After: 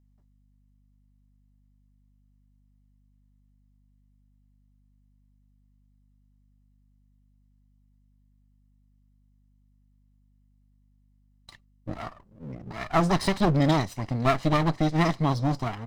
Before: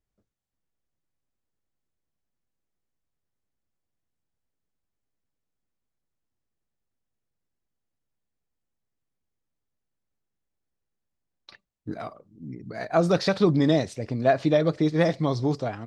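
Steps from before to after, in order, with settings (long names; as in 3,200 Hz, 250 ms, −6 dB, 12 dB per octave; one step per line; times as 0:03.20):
lower of the sound and its delayed copy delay 1 ms
mains hum 50 Hz, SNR 32 dB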